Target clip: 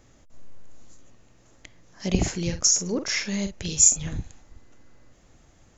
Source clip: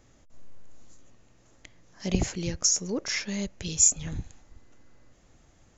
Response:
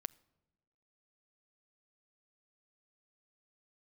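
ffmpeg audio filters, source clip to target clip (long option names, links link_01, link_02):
-filter_complex "[0:a]asettb=1/sr,asplit=3[link_01][link_02][link_03];[link_01]atrim=end=2.134[link_04];[link_02]atrim=start=2.13:end=4.17,asetpts=PTS-STARTPTS,afade=type=in:duration=0.004:curve=qsin,afade=type=out:start_time=2.036:duration=0.004:curve=qsin,asplit=2[link_05][link_06];[link_06]adelay=46,volume=-8.5dB[link_07];[link_05][link_07]amix=inputs=2:normalize=0,atrim=end_sample=89964[link_08];[link_03]atrim=start=4.166[link_09];[link_04][link_08]acrossfade=duration=0.004:curve1=hsin:curve2=qsin[link_10];[link_10][link_09]acrossfade=duration=0.004:curve1=qsin:curve2=hsin,volume=3dB"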